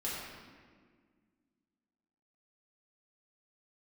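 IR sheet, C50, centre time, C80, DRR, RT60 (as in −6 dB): −1.0 dB, 101 ms, 1.0 dB, −8.0 dB, 1.7 s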